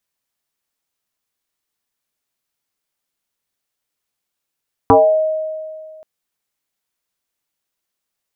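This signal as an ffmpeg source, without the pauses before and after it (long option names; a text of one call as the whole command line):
ffmpeg -f lavfi -i "aevalsrc='0.596*pow(10,-3*t/2.06)*sin(2*PI*628*t+3*pow(10,-3*t/0.46)*sin(2*PI*0.28*628*t))':duration=1.13:sample_rate=44100" out.wav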